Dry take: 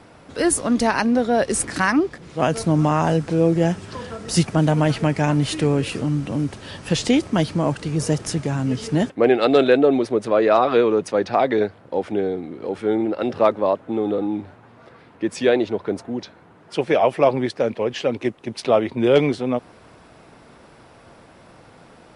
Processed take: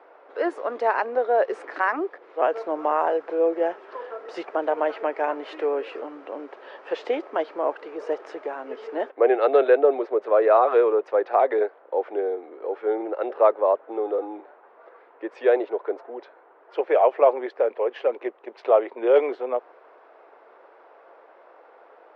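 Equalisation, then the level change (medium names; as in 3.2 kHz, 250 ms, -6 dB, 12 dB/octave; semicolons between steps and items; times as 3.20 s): steep high-pass 400 Hz 36 dB/octave; low-pass 1.5 kHz 12 dB/octave; distance through air 61 m; 0.0 dB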